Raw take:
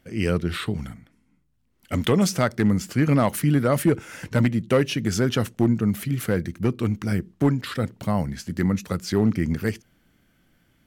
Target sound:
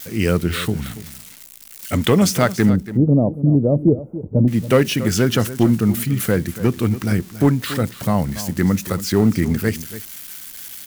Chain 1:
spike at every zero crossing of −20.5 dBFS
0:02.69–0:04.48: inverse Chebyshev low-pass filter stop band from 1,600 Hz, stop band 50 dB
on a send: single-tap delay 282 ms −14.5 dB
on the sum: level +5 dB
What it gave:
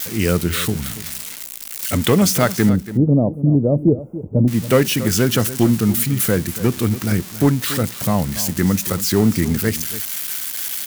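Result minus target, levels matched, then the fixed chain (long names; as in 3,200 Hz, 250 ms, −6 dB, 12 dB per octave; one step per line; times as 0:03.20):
spike at every zero crossing: distortion +9 dB
spike at every zero crossing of −30 dBFS
0:02.69–0:04.48: inverse Chebyshev low-pass filter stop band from 1,600 Hz, stop band 50 dB
on a send: single-tap delay 282 ms −14.5 dB
on the sum: level +5 dB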